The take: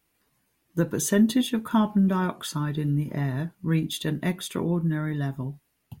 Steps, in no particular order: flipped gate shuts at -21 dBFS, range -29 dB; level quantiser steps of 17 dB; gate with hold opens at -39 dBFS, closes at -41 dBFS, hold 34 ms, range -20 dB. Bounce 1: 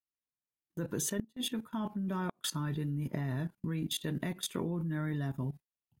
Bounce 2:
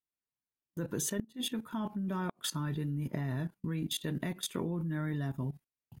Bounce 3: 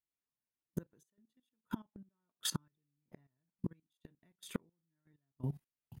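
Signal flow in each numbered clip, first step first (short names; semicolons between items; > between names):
level quantiser > flipped gate > gate with hold; gate with hold > level quantiser > flipped gate; flipped gate > gate with hold > level quantiser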